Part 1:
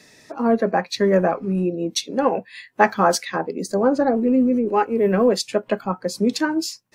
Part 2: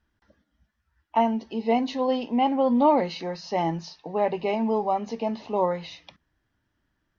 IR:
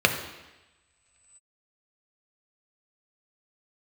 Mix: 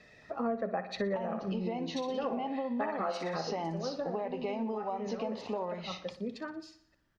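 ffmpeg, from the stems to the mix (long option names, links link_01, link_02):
-filter_complex "[0:a]lowpass=3000,aecho=1:1:1.6:0.44,volume=-6.5dB,afade=type=out:start_time=3.45:duration=0.31:silence=0.334965,asplit=2[link_01][link_02];[link_02]volume=-13.5dB[link_03];[1:a]acompressor=threshold=-30dB:ratio=6,volume=-0.5dB,asplit=3[link_04][link_05][link_06];[link_05]volume=-16.5dB[link_07];[link_06]apad=whole_len=306383[link_08];[link_01][link_08]sidechaincompress=threshold=-39dB:ratio=3:attack=16:release=390[link_09];[link_03][link_07]amix=inputs=2:normalize=0,aecho=0:1:60|120|180|240|300|360|420|480:1|0.53|0.281|0.149|0.0789|0.0418|0.0222|0.0117[link_10];[link_09][link_04][link_10]amix=inputs=3:normalize=0,acompressor=threshold=-30dB:ratio=6"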